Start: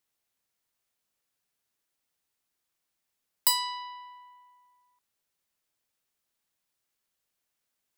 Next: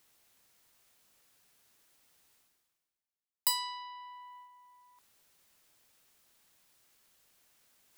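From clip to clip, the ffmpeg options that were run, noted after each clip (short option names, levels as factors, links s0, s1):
-af "agate=range=0.251:threshold=0.00141:ratio=16:detection=peak,areverse,acompressor=mode=upward:threshold=0.0126:ratio=2.5,areverse,volume=0.531"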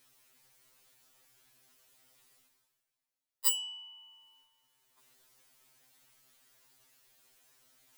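-af "afftfilt=real='re*2.45*eq(mod(b,6),0)':imag='im*2.45*eq(mod(b,6),0)':win_size=2048:overlap=0.75,volume=1.68"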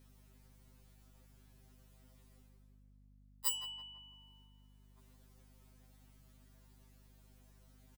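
-filter_complex "[0:a]tiltshelf=f=700:g=8,asplit=2[s0][s1];[s1]adelay=166,lowpass=f=1400:p=1,volume=0.501,asplit=2[s2][s3];[s3]adelay=166,lowpass=f=1400:p=1,volume=0.55,asplit=2[s4][s5];[s5]adelay=166,lowpass=f=1400:p=1,volume=0.55,asplit=2[s6][s7];[s7]adelay=166,lowpass=f=1400:p=1,volume=0.55,asplit=2[s8][s9];[s9]adelay=166,lowpass=f=1400:p=1,volume=0.55,asplit=2[s10][s11];[s11]adelay=166,lowpass=f=1400:p=1,volume=0.55,asplit=2[s12][s13];[s13]adelay=166,lowpass=f=1400:p=1,volume=0.55[s14];[s0][s2][s4][s6][s8][s10][s12][s14]amix=inputs=8:normalize=0,aeval=exprs='val(0)+0.000708*(sin(2*PI*50*n/s)+sin(2*PI*2*50*n/s)/2+sin(2*PI*3*50*n/s)/3+sin(2*PI*4*50*n/s)/4+sin(2*PI*5*50*n/s)/5)':c=same,volume=1.12"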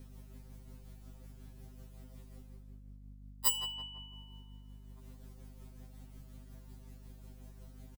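-filter_complex "[0:a]acrossover=split=690|5100[s0][s1][s2];[s0]acontrast=81[s3];[s3][s1][s2]amix=inputs=3:normalize=0,tremolo=f=5.5:d=0.37,aecho=1:1:78|156|234:0.0631|0.0278|0.0122,volume=2"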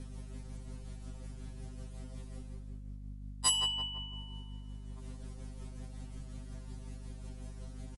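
-af "asoftclip=type=tanh:threshold=0.0562,volume=2.37" -ar 44100 -c:a libmp3lame -b:a 48k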